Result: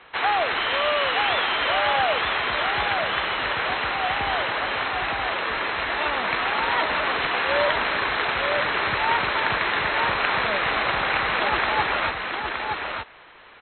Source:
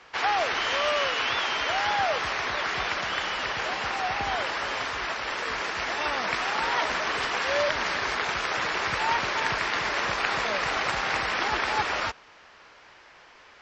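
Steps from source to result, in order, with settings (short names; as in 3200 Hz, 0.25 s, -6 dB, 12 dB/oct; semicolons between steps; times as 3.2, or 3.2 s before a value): brick-wall FIR low-pass 4200 Hz; on a send: echo 0.919 s -4.5 dB; on the sum: gain +3 dB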